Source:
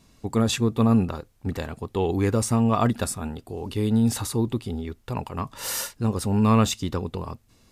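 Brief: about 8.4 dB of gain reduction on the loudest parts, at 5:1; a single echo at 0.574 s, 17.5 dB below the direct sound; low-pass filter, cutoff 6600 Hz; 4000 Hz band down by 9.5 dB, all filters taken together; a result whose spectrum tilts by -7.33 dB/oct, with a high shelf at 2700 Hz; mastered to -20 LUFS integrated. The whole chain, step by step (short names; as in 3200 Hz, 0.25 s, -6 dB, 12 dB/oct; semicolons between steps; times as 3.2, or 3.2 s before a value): LPF 6600 Hz; high shelf 2700 Hz -5 dB; bell 4000 Hz -7 dB; compressor 5:1, threshold -25 dBFS; echo 0.574 s -17.5 dB; gain +11.5 dB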